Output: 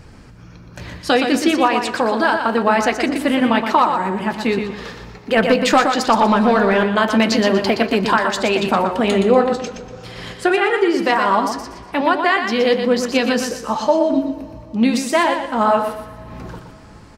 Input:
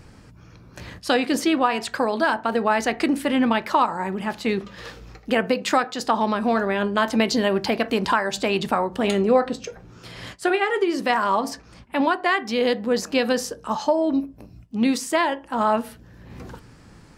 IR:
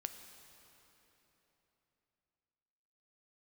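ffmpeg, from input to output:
-filter_complex "[0:a]flanger=delay=1.2:depth=5.6:regen=-56:speed=1.3:shape=triangular,aecho=1:1:120|240|360|480:0.447|0.134|0.0402|0.0121,asettb=1/sr,asplit=3[a][b][c];[a]atrim=end=5.374[d];[b]atrim=start=5.37:end=6.84,asetpts=PTS-STARTPTS,afade=t=in:d=0.004:c=qsin,afade=t=out:st=1.466:d=0.004:c=qsin,aeval=exprs='0.335*(cos(1*acos(clip(val(0)/0.335,-1,1)))-cos(1*PI/2))+0.0335*(cos(5*acos(clip(val(0)/0.335,-1,1)))-cos(5*PI/2))+0.00237*(cos(8*acos(clip(val(0)/0.335,-1,1)))-cos(8*PI/2))':c=same[e];[c]atrim=start=6.836[f];[d][e]acrossfade=d=0.004:c1=hsin:c2=qsin[g];[g][f]acrossfade=d=0.004:c1=qsin:c2=hsin,asplit=2[h][i];[1:a]atrim=start_sample=2205,asetrate=38808,aresample=44100,lowpass=8.2k[j];[i][j]afir=irnorm=-1:irlink=0,volume=-7dB[k];[h][k]amix=inputs=2:normalize=0,volume=6dB"

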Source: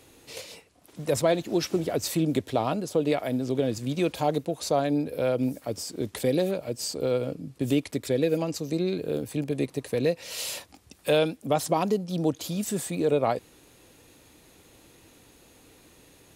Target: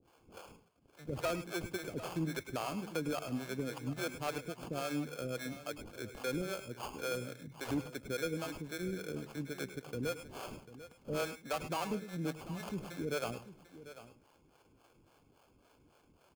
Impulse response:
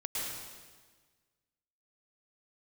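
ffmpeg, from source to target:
-filter_complex "[0:a]asettb=1/sr,asplit=3[a][b][c];[a]atrim=end=7.424[d];[b]atrim=start=7.42:end=7.85,asetpts=PTS-STARTPTS,afade=t=in:d=0.004:c=qsin,afade=t=out:st=0.426:d=0.004:c=qsin,highshelf=f=3.7k:t=q:w=1.5:g=13[e];[c]atrim=start=7.846[f];[d][e]acrossfade=d=0.004:c1=hsin:c2=qsin[g];[g][f]acrossfade=d=0.004:c1=qsin:c2=hsin,acrusher=samples=23:mix=1:aa=0.000001,acrossover=split=410[h][i];[h]aeval=exprs='val(0)*(1-1/2+1/2*cos(2*PI*3.6*n/s))':c=same[j];[i]aeval=exprs='val(0)*(1-1/2-1/2*cos(2*PI*3.6*n/s))':c=same[k];[j][k]amix=inputs=2:normalize=0,volume=21dB,asoftclip=hard,volume=-21dB,aecho=1:1:744:0.178[l];[1:a]atrim=start_sample=2205,afade=t=out:st=0.15:d=0.01,atrim=end_sample=7056[m];[l][m]afir=irnorm=-1:irlink=0,volume=-4dB"

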